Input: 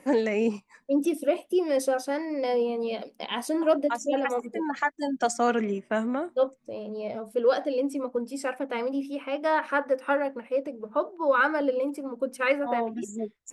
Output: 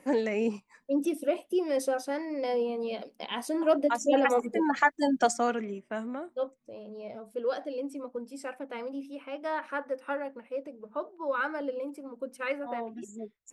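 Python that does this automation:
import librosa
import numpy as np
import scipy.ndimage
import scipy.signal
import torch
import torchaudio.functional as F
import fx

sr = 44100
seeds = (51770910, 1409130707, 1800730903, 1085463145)

y = fx.gain(x, sr, db=fx.line((3.53, -3.5), (4.19, 3.0), (5.16, 3.0), (5.63, -8.0)))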